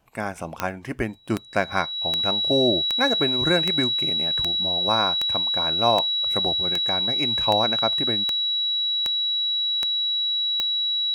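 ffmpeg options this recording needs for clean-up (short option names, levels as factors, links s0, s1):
-af "adeclick=t=4,bandreject=f=3900:w=30"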